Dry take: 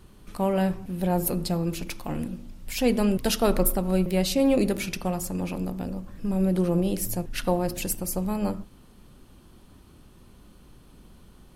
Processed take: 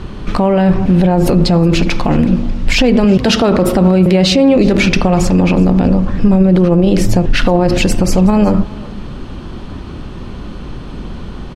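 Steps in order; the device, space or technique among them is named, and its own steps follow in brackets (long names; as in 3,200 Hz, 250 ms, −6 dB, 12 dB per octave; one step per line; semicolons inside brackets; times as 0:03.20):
0:03.04–0:04.57: high-pass filter 47 Hz 24 dB per octave
high-frequency loss of the air 150 metres
loud club master (downward compressor 1.5 to 1, threshold −28 dBFS, peak gain reduction 4.5 dB; hard clipping −16 dBFS, distortion −41 dB; boost into a limiter +27 dB)
single-tap delay 371 ms −21.5 dB
level −1.5 dB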